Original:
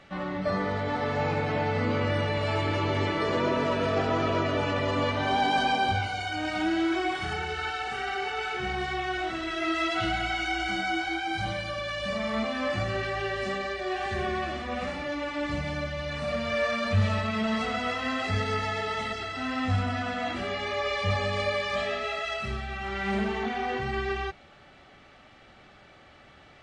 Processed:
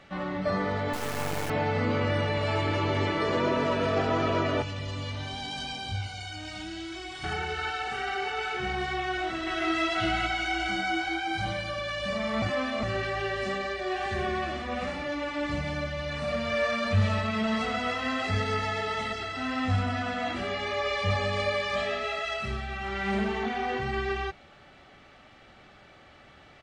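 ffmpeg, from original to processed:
-filter_complex "[0:a]asettb=1/sr,asplit=3[s0][s1][s2];[s0]atrim=end=0.934[s3];[s1]atrim=start=0.93:end=1.5,asetpts=PTS-STARTPTS,afade=t=in:d=0.004:c=qsin,afade=t=out:st=0.566:d=0.004:c=qsin,acrusher=bits=3:dc=4:mix=0:aa=0.000001[s4];[s2]atrim=start=1.496[s5];[s3][s4]acrossfade=d=0.004:c1=hsin:c2=qsin[s6];[s6][s5]acrossfade=d=0.004:c1=qsin:c2=hsin,asettb=1/sr,asplit=3[s7][s8][s9];[s7]atrim=end=4.624[s10];[s8]atrim=start=4.62:end=7.24,asetpts=PTS-STARTPTS,afade=t=in:d=0.004:c=qsin,afade=t=out:st=2.616:d=0.004:c=qsin,acrossover=split=160|3000[s11][s12][s13];[s12]acompressor=threshold=0.00447:ratio=2.5:attack=3.2:release=140:knee=2.83:detection=peak[s14];[s11][s14][s13]amix=inputs=3:normalize=0[s15];[s9]atrim=start=7.236[s16];[s10][s15]acrossfade=d=0.004:c1=hsin:c2=qsin[s17];[s17][s16]acrossfade=d=0.004:c1=qsin:c2=hsin,asplit=2[s18][s19];[s19]afade=t=in:st=9.04:d=0.01,afade=t=out:st=9.84:d=0.01,aecho=0:1:420|840|1260:0.501187|0.125297|0.0313242[s20];[s18][s20]amix=inputs=2:normalize=0,asplit=3[s21][s22][s23];[s21]atrim=end=12.422[s24];[s22]atrim=start=12.418:end=12.832,asetpts=PTS-STARTPTS,areverse[s25];[s23]atrim=start=12.828[s26];[s24][s25]acrossfade=d=0.004:c1=hsin:c2=hsin[s27];[s27][s26]acrossfade=d=0.004:c1=hsin:c2=hsin"

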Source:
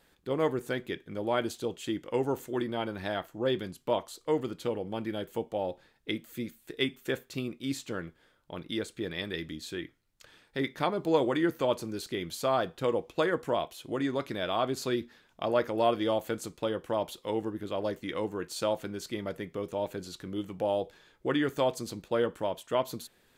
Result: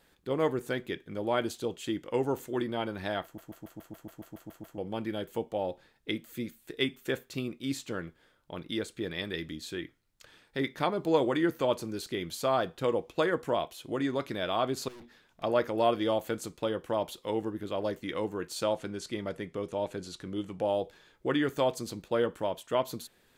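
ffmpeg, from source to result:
-filter_complex "[0:a]asettb=1/sr,asplit=3[s0][s1][s2];[s0]atrim=end=14.884[s3];[s1]atrim=start=14.88:end=15.43,asetpts=PTS-STARTPTS,afade=t=in:d=0.004:c=qsin,afade=t=out:st=0.546:d=0.004:c=qsin,aeval=exprs='(tanh(251*val(0)+0.25)-tanh(0.25))/251':c=same[s4];[s2]atrim=start=15.426[s5];[s3][s4]acrossfade=d=0.004:c1=hsin:c2=qsin[s6];[s6][s5]acrossfade=d=0.004:c1=qsin:c2=hsin,asettb=1/sr,asplit=3[s7][s8][s9];[s7]atrim=end=18.634[s10];[s8]atrim=start=18.63:end=20.74,asetpts=PTS-STARTPTS,afade=t=in:d=0.004:c=qsin,afade=t=out:st=2.106:d=0.004:c=qsin,lowpass=f=11000:w=0.5412,lowpass=f=11000:w=1.3066[s11];[s9]atrim=start=20.736[s12];[s10][s11]acrossfade=d=0.004:c1=hsin:c2=qsin[s13];[s13][s12]acrossfade=d=0.004:c1=qsin:c2=hsin,asplit=12[s14][s15][s16][s17][s18][s19][s20][s21][s22][s23][s24][s25];[s14]atrim=end=3.382[s26];[s15]atrim=start=3.238:end=3.382[s27];[s16]atrim=start=3.238:end=3.382[s28];[s17]atrim=start=3.238:end=3.382[s29];[s18]atrim=start=3.238:end=3.382[s30];[s19]atrim=start=3.238:end=3.382[s31];[s20]atrim=start=3.238:end=3.382[s32];[s21]atrim=start=3.238:end=3.382[s33];[s22]atrim=start=3.238:end=3.382[s34];[s23]atrim=start=3.238:end=3.382[s35];[s24]atrim=start=3.238:end=3.382[s36];[s25]atrim=start=4.778[s37];[s26][s27]acrossfade=d=0.004:c1=hsin:c2=hsin[s38];[s38][s28]acrossfade=d=0.004:c1=hsin:c2=hsin[s39];[s39][s29]acrossfade=d=0.004:c1=hsin:c2=hsin[s40];[s40][s30]acrossfade=d=0.004:c1=hsin:c2=hsin[s41];[s41][s31]acrossfade=d=0.004:c1=hsin:c2=hsin[s42];[s42][s32]acrossfade=d=0.004:c1=hsin:c2=hsin[s43];[s43][s33]acrossfade=d=0.004:c1=hsin:c2=hsin[s44];[s44][s34]acrossfade=d=0.004:c1=hsin:c2=hsin[s45];[s45][s35]acrossfade=d=0.004:c1=hsin:c2=hsin[s46];[s46][s36]acrossfade=d=0.004:c1=hsin:c2=hsin[s47];[s47][s37]acrossfade=d=0.004:c1=hsin:c2=hsin"

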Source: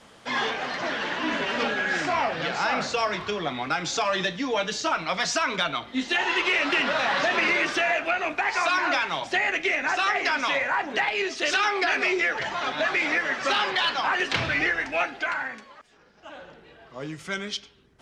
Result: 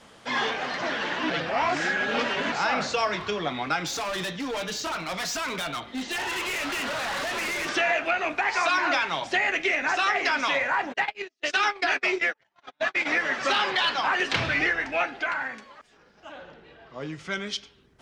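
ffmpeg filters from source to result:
-filter_complex "[0:a]asettb=1/sr,asplit=3[s0][s1][s2];[s0]atrim=end=3.864[s3];[s1]atrim=start=3.86:end=7.69,asetpts=PTS-STARTPTS,afade=t=in:d=0.004:c=qsin,afade=t=out:st=3.826:d=0.004:c=qsin,asoftclip=type=hard:threshold=0.0398[s4];[s2]atrim=start=7.686[s5];[s3][s4]acrossfade=d=0.004:c1=hsin:c2=qsin[s6];[s6][s5]acrossfade=d=0.004:c1=qsin:c2=hsin,asplit=3[s7][s8][s9];[s7]afade=t=out:st=10.92:d=0.02[s10];[s8]agate=range=0.00398:threshold=0.0562:ratio=16:release=100:detection=peak,afade=t=in:st=10.92:d=0.02,afade=t=out:st=13.05:d=0.02[s11];[s9]afade=t=in:st=13.05:d=0.02[s12];[s10][s11][s12]amix=inputs=3:normalize=0,asettb=1/sr,asplit=3[s13][s14][s15];[s13]atrim=end=14.734[s16];[s14]atrim=start=14.73:end=15.42,asetpts=PTS-STARTPTS,afade=t=in:d=0.004:c=qsin,afade=t=out:st=0.686:d=0.004:c=qsin,highshelf=f=6000:g=-6.5[s17];[s15]atrim=start=15.416[s18];[s16][s17]acrossfade=d=0.004:c1=hsin:c2=qsin[s19];[s19][s18]acrossfade=d=0.004:c1=qsin:c2=hsin,asettb=1/sr,asplit=3[s20][s21][s22];[s20]atrim=end=16.324[s23];[s21]atrim=start=16.32:end=17.46,asetpts=PTS-STARTPTS,afade=t=in:d=0.004:c=qsin,afade=t=out:st=1.136:d=0.004:c=qsin,lowpass=5800[s24];[s22]atrim=start=17.456[s25];[s23][s24]acrossfade=d=0.004:c1=hsin:c2=qsin[s26];[s26][s25]acrossfade=d=0.004:c1=qsin:c2=hsin,asplit=3[s27][s28][s29];[s27]atrim=end=1.302[s30];[s28]atrim=start=1.298:end=2.522,asetpts=PTS-STARTPTS,areverse[s31];[s29]atrim=start=2.518[s32];[s30][s31]acrossfade=d=0.004:c1=hsin:c2=hsin[s33];[s33][s32]acrossfade=d=0.004:c1=hsin:c2=hsin"

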